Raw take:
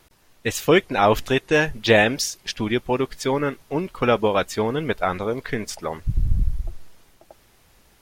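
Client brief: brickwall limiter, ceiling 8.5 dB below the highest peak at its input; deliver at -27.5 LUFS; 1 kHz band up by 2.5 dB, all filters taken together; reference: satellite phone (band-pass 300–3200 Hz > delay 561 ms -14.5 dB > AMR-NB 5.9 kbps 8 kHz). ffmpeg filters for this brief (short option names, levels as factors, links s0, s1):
-af "equalizer=f=1000:t=o:g=3.5,alimiter=limit=0.299:level=0:latency=1,highpass=300,lowpass=3200,aecho=1:1:561:0.188,volume=0.944" -ar 8000 -c:a libopencore_amrnb -b:a 5900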